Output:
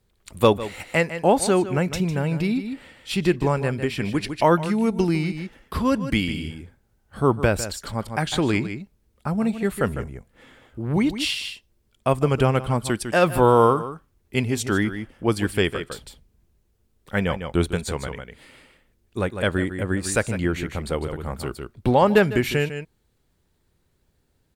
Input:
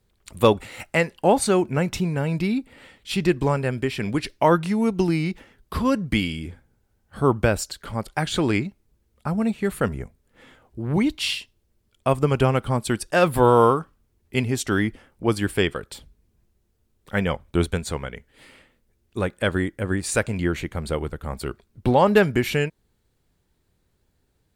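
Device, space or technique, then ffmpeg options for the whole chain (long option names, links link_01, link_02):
ducked delay: -filter_complex "[0:a]asplit=3[link_01][link_02][link_03];[link_02]adelay=152,volume=-5dB[link_04];[link_03]apad=whole_len=1089729[link_05];[link_04][link_05]sidechaincompress=threshold=-28dB:ratio=8:attack=38:release=292[link_06];[link_01][link_06]amix=inputs=2:normalize=0"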